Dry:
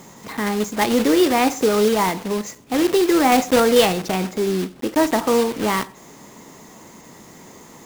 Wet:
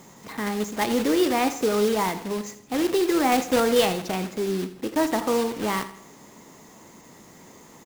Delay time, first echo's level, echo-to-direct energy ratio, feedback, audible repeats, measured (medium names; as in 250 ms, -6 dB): 82 ms, -15.0 dB, -14.0 dB, 45%, 3